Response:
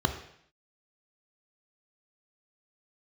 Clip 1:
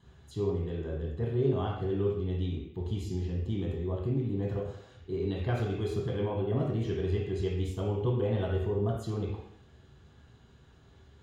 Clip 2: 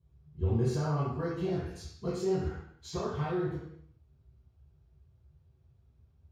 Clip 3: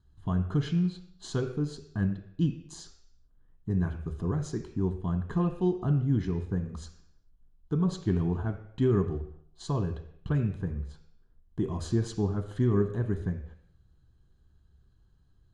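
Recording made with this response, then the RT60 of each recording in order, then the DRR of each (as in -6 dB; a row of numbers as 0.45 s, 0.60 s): 3; 0.65 s, 0.65 s, 0.65 s; -3.5 dB, -12.5 dB, 6.5 dB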